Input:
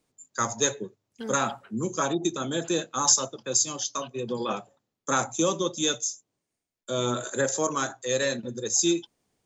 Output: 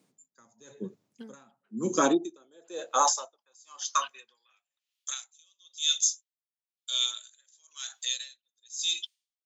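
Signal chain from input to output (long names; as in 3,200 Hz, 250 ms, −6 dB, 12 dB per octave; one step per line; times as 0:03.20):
brickwall limiter −17 dBFS, peak gain reduction 9 dB
high-pass filter sweep 180 Hz → 3,300 Hz, 0:01.54–0:05.08
tremolo with a sine in dB 1 Hz, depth 37 dB
level +4 dB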